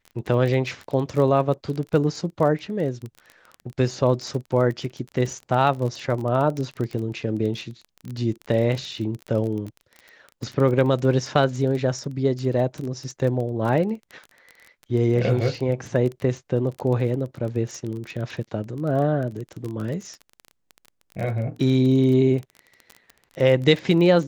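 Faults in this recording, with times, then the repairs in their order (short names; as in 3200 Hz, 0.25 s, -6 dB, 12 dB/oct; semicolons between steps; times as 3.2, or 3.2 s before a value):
crackle 22/s -28 dBFS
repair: de-click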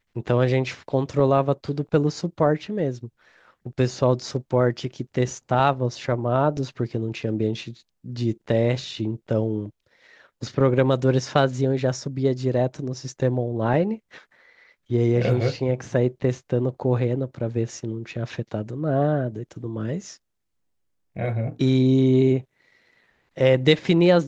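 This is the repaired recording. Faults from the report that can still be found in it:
none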